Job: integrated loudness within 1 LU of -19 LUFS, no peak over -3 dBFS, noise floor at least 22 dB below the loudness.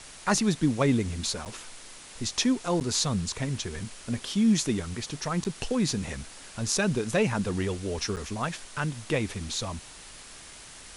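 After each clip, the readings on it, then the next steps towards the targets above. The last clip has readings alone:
dropouts 4; longest dropout 8.5 ms; noise floor -47 dBFS; noise floor target -51 dBFS; loudness -28.5 LUFS; peak -8.5 dBFS; loudness target -19.0 LUFS
-> interpolate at 1.45/2.8/5.44/8.16, 8.5 ms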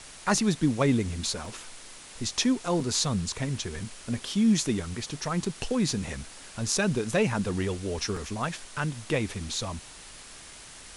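dropouts 0; noise floor -47 dBFS; noise floor target -51 dBFS
-> denoiser 6 dB, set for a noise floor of -47 dBFS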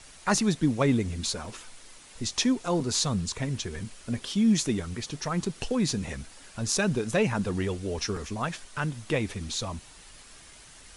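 noise floor -51 dBFS; loudness -28.5 LUFS; peak -8.5 dBFS; loudness target -19.0 LUFS
-> gain +9.5 dB; limiter -3 dBFS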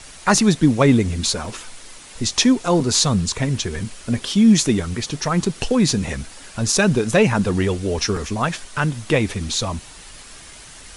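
loudness -19.0 LUFS; peak -3.0 dBFS; noise floor -41 dBFS

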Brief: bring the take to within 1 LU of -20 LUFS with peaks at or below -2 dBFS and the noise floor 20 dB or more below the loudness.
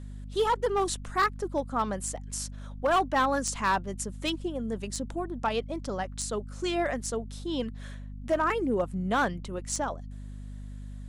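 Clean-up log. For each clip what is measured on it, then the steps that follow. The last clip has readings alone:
clipped 0.6%; flat tops at -19.0 dBFS; hum 50 Hz; harmonics up to 250 Hz; hum level -38 dBFS; loudness -30.0 LUFS; peak -19.0 dBFS; loudness target -20.0 LUFS
-> clip repair -19 dBFS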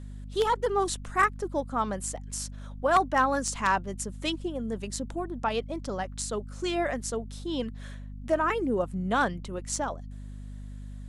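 clipped 0.0%; hum 50 Hz; harmonics up to 250 Hz; hum level -38 dBFS
-> notches 50/100/150/200/250 Hz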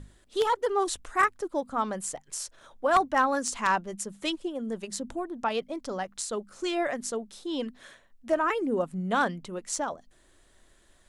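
hum none; loudness -29.5 LUFS; peak -10.0 dBFS; loudness target -20.0 LUFS
-> gain +9.5 dB; limiter -2 dBFS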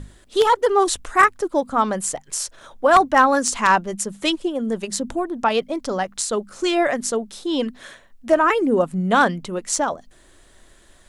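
loudness -20.0 LUFS; peak -2.0 dBFS; noise floor -52 dBFS

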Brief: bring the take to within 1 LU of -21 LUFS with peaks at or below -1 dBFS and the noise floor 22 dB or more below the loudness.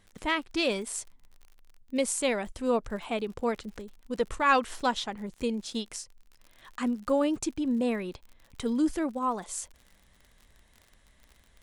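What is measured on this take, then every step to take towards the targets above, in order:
ticks 51/s; loudness -30.0 LUFS; peak -10.5 dBFS; loudness target -21.0 LUFS
-> de-click; gain +9 dB

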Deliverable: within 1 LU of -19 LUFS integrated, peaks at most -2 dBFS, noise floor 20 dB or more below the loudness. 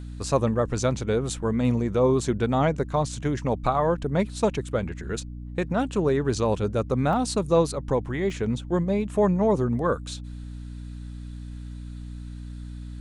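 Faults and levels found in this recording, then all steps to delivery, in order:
dropouts 2; longest dropout 1.1 ms; hum 60 Hz; harmonics up to 300 Hz; hum level -34 dBFS; loudness -25.0 LUFS; peak -9.0 dBFS; loudness target -19.0 LUFS
-> interpolate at 7.13/8.3, 1.1 ms; de-hum 60 Hz, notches 5; gain +6 dB

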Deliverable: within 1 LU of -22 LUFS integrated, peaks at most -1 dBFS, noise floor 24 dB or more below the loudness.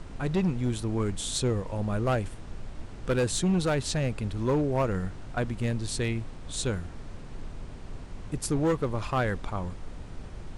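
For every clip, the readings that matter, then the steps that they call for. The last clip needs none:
clipped 1.7%; flat tops at -20.0 dBFS; noise floor -42 dBFS; noise floor target -54 dBFS; loudness -29.5 LUFS; peak -20.0 dBFS; loudness target -22.0 LUFS
-> clip repair -20 dBFS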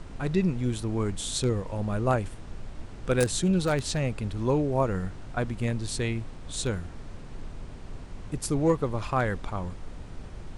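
clipped 0.0%; noise floor -42 dBFS; noise floor target -53 dBFS
-> noise print and reduce 11 dB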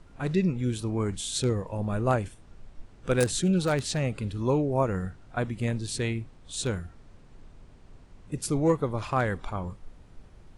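noise floor -53 dBFS; loudness -28.5 LUFS; peak -11.0 dBFS; loudness target -22.0 LUFS
-> gain +6.5 dB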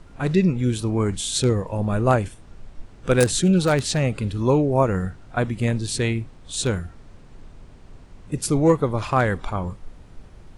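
loudness -22.0 LUFS; peak -4.5 dBFS; noise floor -47 dBFS

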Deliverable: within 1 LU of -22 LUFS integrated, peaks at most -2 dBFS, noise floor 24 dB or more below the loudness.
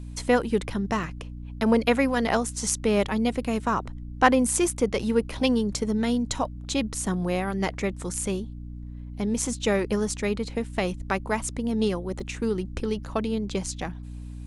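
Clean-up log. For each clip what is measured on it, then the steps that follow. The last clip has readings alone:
dropouts 2; longest dropout 3.0 ms; hum 60 Hz; harmonics up to 300 Hz; hum level -35 dBFS; loudness -26.0 LUFS; peak -4.5 dBFS; loudness target -22.0 LUFS
-> interpolate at 1.03/12.2, 3 ms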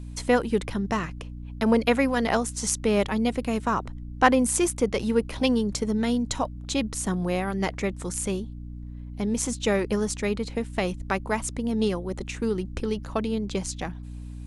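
dropouts 0; hum 60 Hz; harmonics up to 300 Hz; hum level -35 dBFS
-> de-hum 60 Hz, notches 5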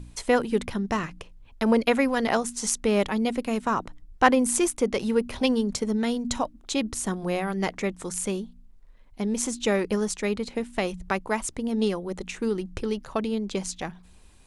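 hum none; loudness -26.5 LUFS; peak -4.5 dBFS; loudness target -22.0 LUFS
-> gain +4.5 dB; limiter -2 dBFS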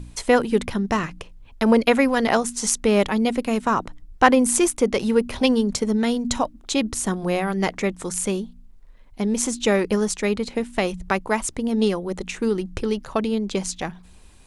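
loudness -22.0 LUFS; peak -2.0 dBFS; noise floor -47 dBFS

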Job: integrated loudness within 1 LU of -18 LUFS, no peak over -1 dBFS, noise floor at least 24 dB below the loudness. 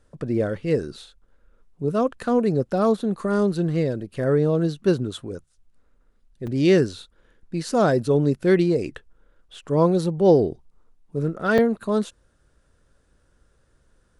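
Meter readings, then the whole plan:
dropouts 2; longest dropout 4.9 ms; loudness -22.0 LUFS; peak -6.0 dBFS; loudness target -18.0 LUFS
-> interpolate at 6.47/11.58, 4.9 ms; gain +4 dB

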